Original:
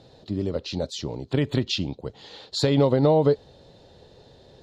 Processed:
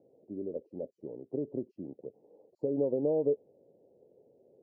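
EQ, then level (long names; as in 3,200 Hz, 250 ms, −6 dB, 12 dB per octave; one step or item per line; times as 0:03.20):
high-pass filter 340 Hz 12 dB per octave
inverse Chebyshev low-pass filter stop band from 1,400 Hz, stop band 50 dB
−5.5 dB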